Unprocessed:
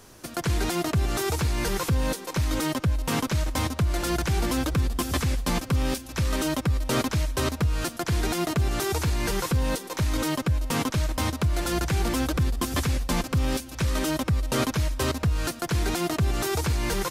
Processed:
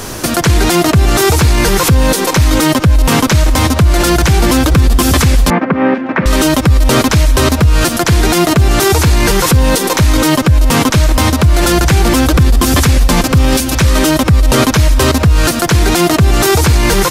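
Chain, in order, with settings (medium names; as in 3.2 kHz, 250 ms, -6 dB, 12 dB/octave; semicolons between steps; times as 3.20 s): compression, threshold -26 dBFS, peak gain reduction 7 dB; 5.50–6.26 s: Chebyshev band-pass 190–2000 Hz, order 3; loudness maximiser +27.5 dB; trim -1 dB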